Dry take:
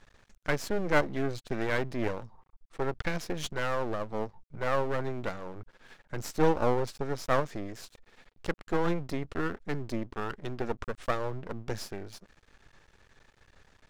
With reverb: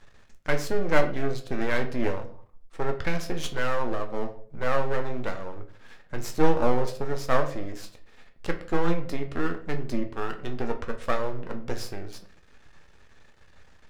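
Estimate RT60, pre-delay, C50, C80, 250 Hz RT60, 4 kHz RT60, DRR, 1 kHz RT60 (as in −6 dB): 0.50 s, 3 ms, 12.0 dB, 16.0 dB, 0.60 s, 0.35 s, 4.5 dB, 0.45 s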